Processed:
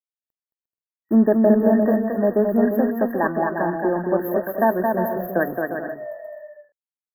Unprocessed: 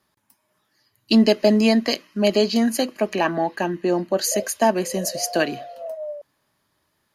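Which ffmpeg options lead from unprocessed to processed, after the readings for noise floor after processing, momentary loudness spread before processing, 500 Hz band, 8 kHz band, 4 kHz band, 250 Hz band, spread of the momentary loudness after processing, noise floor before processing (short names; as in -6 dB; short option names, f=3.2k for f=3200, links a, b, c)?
under -85 dBFS, 15 LU, +1.5 dB, under -40 dB, under -40 dB, +1.0 dB, 13 LU, -71 dBFS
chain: -af "aeval=exprs='sgn(val(0))*max(abs(val(0))-0.0106,0)':c=same,afftfilt=real='re*(1-between(b*sr/4096,1900,12000))':imag='im*(1-between(b*sr/4096,1900,12000))':win_size=4096:overlap=0.75,aecho=1:1:220|352|431.2|478.7|507.2:0.631|0.398|0.251|0.158|0.1"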